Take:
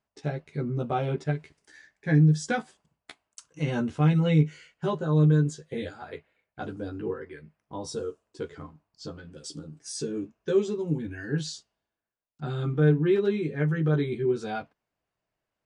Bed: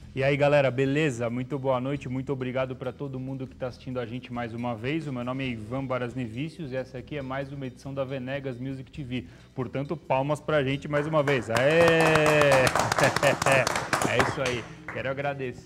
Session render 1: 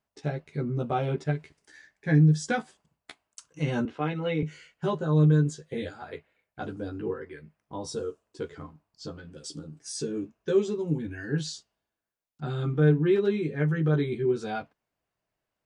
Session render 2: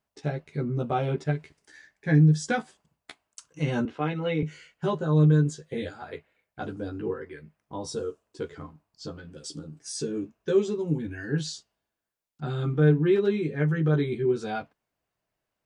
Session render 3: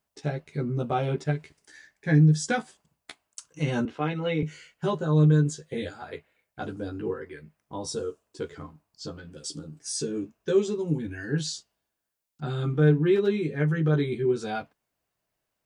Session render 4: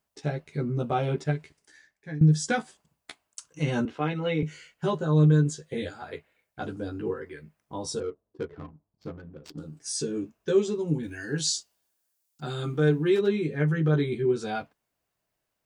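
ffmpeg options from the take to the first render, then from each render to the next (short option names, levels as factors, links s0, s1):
-filter_complex "[0:a]asettb=1/sr,asplit=3[s0][s1][s2];[s0]atrim=end=3.854[s3];[s1]atrim=start=3.85:end=4.43,asetpts=PTS-STARTPTS,afade=t=in:d=0.004:c=qsin,afade=t=out:st=0.576:d=0.004:c=qsin,acrossover=split=250 4200:gain=0.126 1 0.0891[s4][s5][s6];[s4][s5][s6]amix=inputs=3:normalize=0[s7];[s2]atrim=start=4.426[s8];[s3][s7]acrossfade=d=0.004:c1=hsin:c2=qsin[s9];[s9][s8]acrossfade=d=0.004:c1=qsin:c2=hsin"
-af "volume=1.12"
-af "highshelf=f=5200:g=6"
-filter_complex "[0:a]asettb=1/sr,asplit=3[s0][s1][s2];[s0]atrim=end=8.004[s3];[s1]atrim=start=8:end=9.58,asetpts=PTS-STARTPTS,afade=t=in:d=0.004:c=qsin,afade=t=out:st=1.576:d=0.004:c=qsin,adynamicsmooth=sensitivity=6.5:basefreq=580[s4];[s2]atrim=start=9.576[s5];[s3][s4]acrossfade=d=0.004:c1=hsin:c2=qsin[s6];[s6][s5]acrossfade=d=0.004:c1=qsin:c2=hsin,asettb=1/sr,asplit=3[s7][s8][s9];[s7]atrim=end=11.034[s10];[s8]atrim=start=11.03:end=13.21,asetpts=PTS-STARTPTS,afade=t=in:d=0.004:c=qsin,afade=t=out:st=2.176:d=0.004:c=qsin,bass=f=250:g=-5,treble=f=4000:g=9[s11];[s9]atrim=start=13.206[s12];[s10][s11]acrossfade=d=0.004:c1=hsin:c2=qsin[s13];[s13][s12]acrossfade=d=0.004:c1=qsin:c2=hsin,asplit=2[s14][s15];[s14]atrim=end=2.21,asetpts=PTS-STARTPTS,afade=t=out:st=1.28:d=0.93:silence=0.133352[s16];[s15]atrim=start=2.21,asetpts=PTS-STARTPTS,afade=t=in:d=0.004:c=hsin:silence=0.133352[s17];[s16][s17]concat=n=2:v=0:a=1"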